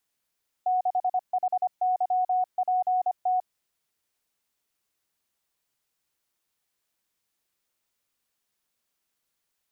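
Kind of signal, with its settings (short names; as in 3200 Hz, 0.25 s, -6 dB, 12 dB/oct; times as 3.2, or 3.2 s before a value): Morse "6HYPT" 25 wpm 736 Hz -21 dBFS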